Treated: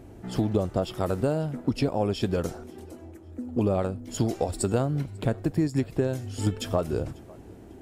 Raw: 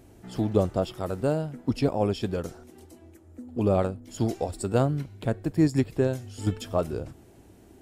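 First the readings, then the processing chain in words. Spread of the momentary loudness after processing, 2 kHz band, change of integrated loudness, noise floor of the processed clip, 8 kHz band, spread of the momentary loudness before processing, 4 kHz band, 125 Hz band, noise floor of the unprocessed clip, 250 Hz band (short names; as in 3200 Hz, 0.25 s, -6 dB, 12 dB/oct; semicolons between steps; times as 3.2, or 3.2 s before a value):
17 LU, 0.0 dB, -0.5 dB, -47 dBFS, +4.5 dB, 9 LU, +2.5 dB, +0.5 dB, -53 dBFS, -0.5 dB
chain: compressor 6:1, threshold -28 dBFS, peak gain reduction 11.5 dB; thinning echo 0.545 s, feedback 36%, level -22 dB; mismatched tape noise reduction decoder only; gain +6.5 dB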